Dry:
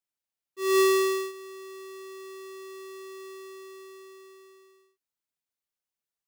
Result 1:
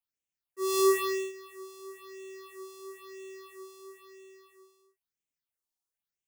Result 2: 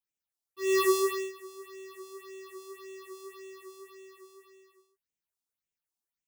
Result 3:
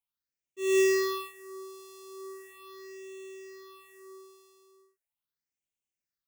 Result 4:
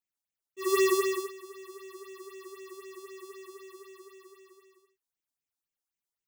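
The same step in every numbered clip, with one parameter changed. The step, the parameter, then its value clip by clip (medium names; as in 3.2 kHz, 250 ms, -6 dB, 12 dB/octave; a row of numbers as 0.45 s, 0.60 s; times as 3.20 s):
phase shifter, rate: 1 Hz, 1.8 Hz, 0.39 Hz, 3.9 Hz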